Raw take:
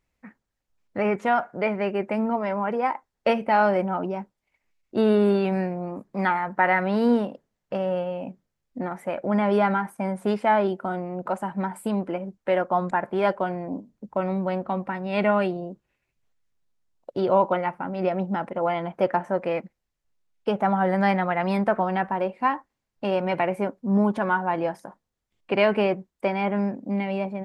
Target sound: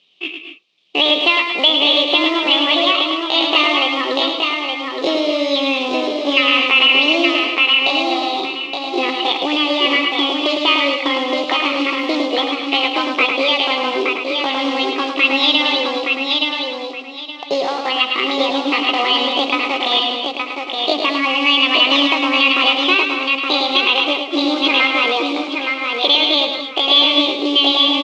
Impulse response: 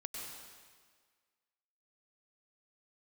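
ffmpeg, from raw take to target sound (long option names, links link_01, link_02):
-filter_complex "[0:a]bandreject=frequency=1000:width=5.1,acompressor=threshold=-28dB:ratio=16,asetrate=63504,aresample=44100,acrusher=bits=5:mode=log:mix=0:aa=0.000001,aexciter=amount=15.1:drive=1.1:freq=2500,atempo=0.68,highpass=frequency=210:width=0.5412,highpass=frequency=210:width=1.3066,equalizer=frequency=250:width_type=q:width=4:gain=-7,equalizer=frequency=880:width_type=q:width=4:gain=-8,equalizer=frequency=1900:width_type=q:width=4:gain=-5,lowpass=frequency=3200:width=0.5412,lowpass=frequency=3200:width=1.3066,aecho=1:1:870|1740|2610:0.596|0.143|0.0343,asplit=2[link_01][link_02];[1:a]atrim=start_sample=2205,afade=type=out:start_time=0.21:duration=0.01,atrim=end_sample=9702,adelay=106[link_03];[link_02][link_03]afir=irnorm=-1:irlink=0,volume=-1.5dB[link_04];[link_01][link_04]amix=inputs=2:normalize=0,alimiter=level_in=14.5dB:limit=-1dB:release=50:level=0:latency=1,volume=-1dB"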